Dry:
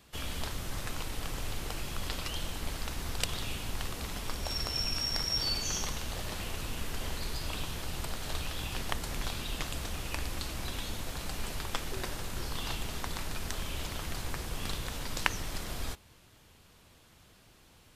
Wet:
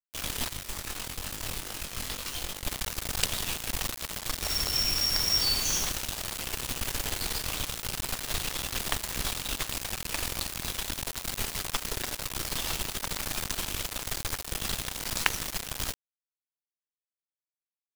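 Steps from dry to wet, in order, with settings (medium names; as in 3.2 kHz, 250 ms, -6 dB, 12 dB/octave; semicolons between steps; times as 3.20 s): treble shelf 2.2 kHz +6.5 dB; bit crusher 5-bit; 0.49–2.64 s: chorus 2.3 Hz, delay 20 ms, depth 3 ms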